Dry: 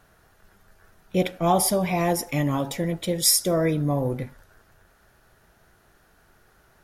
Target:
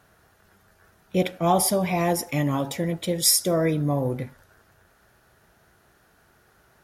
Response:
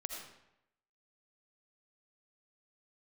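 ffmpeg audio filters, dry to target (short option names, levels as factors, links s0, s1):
-af "highpass=55"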